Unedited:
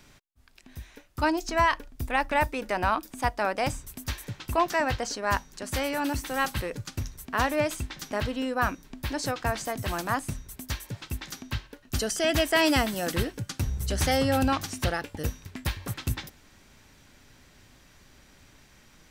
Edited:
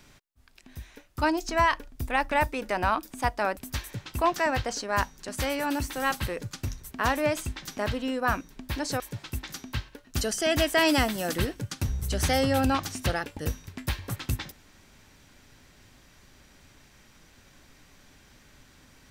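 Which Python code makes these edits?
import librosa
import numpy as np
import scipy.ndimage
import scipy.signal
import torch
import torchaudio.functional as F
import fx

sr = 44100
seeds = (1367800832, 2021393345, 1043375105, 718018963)

y = fx.edit(x, sr, fx.cut(start_s=3.57, length_s=0.34),
    fx.cut(start_s=9.34, length_s=1.44), tone=tone)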